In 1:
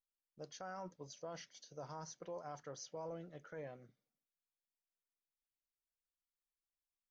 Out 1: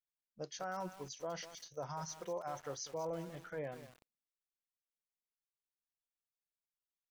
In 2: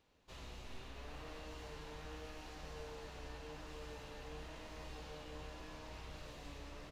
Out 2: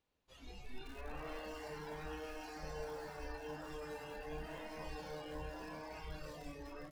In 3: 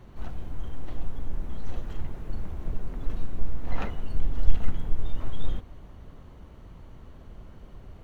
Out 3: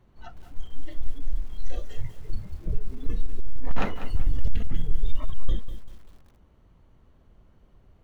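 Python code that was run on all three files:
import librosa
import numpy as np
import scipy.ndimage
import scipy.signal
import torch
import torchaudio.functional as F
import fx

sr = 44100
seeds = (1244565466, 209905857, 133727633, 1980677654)

y = fx.noise_reduce_blind(x, sr, reduce_db=17)
y = np.clip(y, -10.0 ** (-17.5 / 20.0), 10.0 ** (-17.5 / 20.0))
y = fx.echo_crushed(y, sr, ms=195, feedback_pct=35, bits=9, wet_db=-11)
y = y * librosa.db_to_amplitude(6.0)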